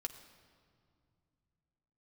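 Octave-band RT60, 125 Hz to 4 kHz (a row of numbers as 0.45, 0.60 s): 3.6, 3.3, 2.4, 2.2, 1.7, 1.5 s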